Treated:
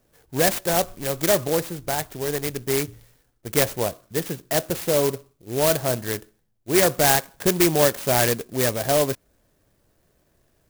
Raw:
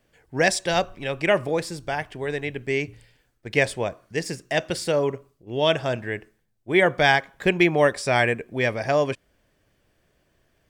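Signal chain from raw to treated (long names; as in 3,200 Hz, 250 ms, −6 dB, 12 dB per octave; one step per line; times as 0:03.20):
parametric band 6,700 Hz −11 dB 0.37 octaves
in parallel at −12 dB: wrap-around overflow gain 14 dB
on the sum: converter with an unsteady clock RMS 0.11 ms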